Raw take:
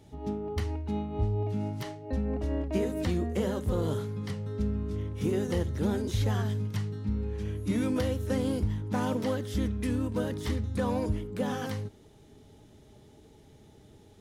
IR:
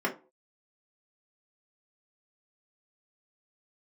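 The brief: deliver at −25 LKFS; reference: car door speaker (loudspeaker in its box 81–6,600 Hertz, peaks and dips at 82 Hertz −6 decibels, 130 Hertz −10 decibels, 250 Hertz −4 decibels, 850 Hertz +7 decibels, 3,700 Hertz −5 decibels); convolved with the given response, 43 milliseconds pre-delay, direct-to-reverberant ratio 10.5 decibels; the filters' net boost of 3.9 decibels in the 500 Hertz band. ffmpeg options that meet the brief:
-filter_complex "[0:a]equalizer=frequency=500:width_type=o:gain=4.5,asplit=2[link_01][link_02];[1:a]atrim=start_sample=2205,adelay=43[link_03];[link_02][link_03]afir=irnorm=-1:irlink=0,volume=-20dB[link_04];[link_01][link_04]amix=inputs=2:normalize=0,highpass=81,equalizer=frequency=82:width_type=q:width=4:gain=-6,equalizer=frequency=130:width_type=q:width=4:gain=-10,equalizer=frequency=250:width_type=q:width=4:gain=-4,equalizer=frequency=850:width_type=q:width=4:gain=7,equalizer=frequency=3700:width_type=q:width=4:gain=-5,lowpass=frequency=6600:width=0.5412,lowpass=frequency=6600:width=1.3066,volume=6dB"

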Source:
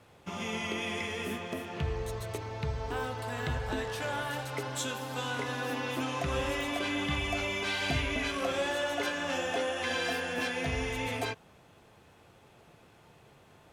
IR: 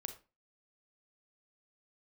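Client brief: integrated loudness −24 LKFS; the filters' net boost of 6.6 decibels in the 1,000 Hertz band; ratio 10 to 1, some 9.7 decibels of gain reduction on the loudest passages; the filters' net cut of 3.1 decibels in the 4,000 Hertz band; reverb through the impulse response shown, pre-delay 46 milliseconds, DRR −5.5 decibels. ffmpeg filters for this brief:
-filter_complex "[0:a]equalizer=frequency=1000:width_type=o:gain=8.5,equalizer=frequency=4000:width_type=o:gain=-5,acompressor=threshold=-35dB:ratio=10,asplit=2[link_01][link_02];[1:a]atrim=start_sample=2205,adelay=46[link_03];[link_02][link_03]afir=irnorm=-1:irlink=0,volume=8dB[link_04];[link_01][link_04]amix=inputs=2:normalize=0,volume=8dB"

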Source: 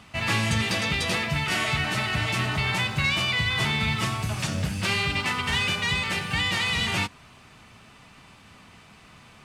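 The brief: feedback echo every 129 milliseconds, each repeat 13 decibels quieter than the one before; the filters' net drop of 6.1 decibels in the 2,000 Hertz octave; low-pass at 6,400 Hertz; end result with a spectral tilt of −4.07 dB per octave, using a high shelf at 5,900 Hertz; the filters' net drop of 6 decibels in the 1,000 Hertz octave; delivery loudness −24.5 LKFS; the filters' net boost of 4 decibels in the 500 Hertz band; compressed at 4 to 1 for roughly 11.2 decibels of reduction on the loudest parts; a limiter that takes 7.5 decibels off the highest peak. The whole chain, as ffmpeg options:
ffmpeg -i in.wav -af "lowpass=6400,equalizer=frequency=500:width_type=o:gain=8,equalizer=frequency=1000:width_type=o:gain=-8.5,equalizer=frequency=2000:width_type=o:gain=-7,highshelf=frequency=5900:gain=8,acompressor=threshold=-36dB:ratio=4,alimiter=level_in=7.5dB:limit=-24dB:level=0:latency=1,volume=-7.5dB,aecho=1:1:129|258|387:0.224|0.0493|0.0108,volume=15dB" out.wav

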